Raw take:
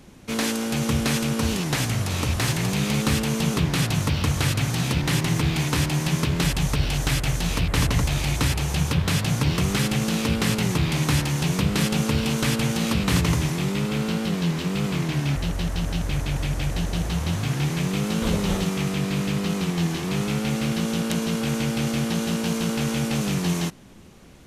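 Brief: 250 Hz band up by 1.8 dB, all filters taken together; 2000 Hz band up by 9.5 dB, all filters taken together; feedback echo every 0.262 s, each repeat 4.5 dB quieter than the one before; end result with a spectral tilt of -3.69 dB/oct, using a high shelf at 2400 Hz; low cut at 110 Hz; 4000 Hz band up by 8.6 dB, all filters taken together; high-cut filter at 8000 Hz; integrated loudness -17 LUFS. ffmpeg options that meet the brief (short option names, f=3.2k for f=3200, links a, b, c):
-af "highpass=110,lowpass=8k,equalizer=f=250:t=o:g=3,equalizer=f=2k:t=o:g=8.5,highshelf=f=2.4k:g=3,equalizer=f=4k:t=o:g=5.5,aecho=1:1:262|524|786|1048|1310|1572|1834|2096|2358:0.596|0.357|0.214|0.129|0.0772|0.0463|0.0278|0.0167|0.01,volume=1.5dB"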